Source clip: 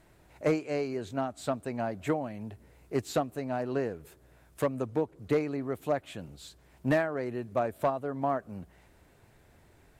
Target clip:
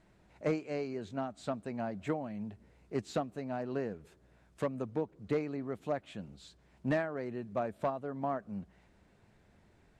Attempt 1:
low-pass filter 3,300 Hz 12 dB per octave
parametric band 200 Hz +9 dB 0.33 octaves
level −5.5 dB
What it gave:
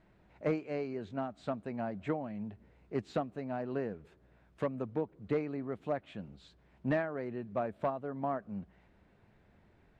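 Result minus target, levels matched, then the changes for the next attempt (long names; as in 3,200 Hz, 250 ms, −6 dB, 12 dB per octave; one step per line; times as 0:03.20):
8,000 Hz band −11.0 dB
change: low-pass filter 6,900 Hz 12 dB per octave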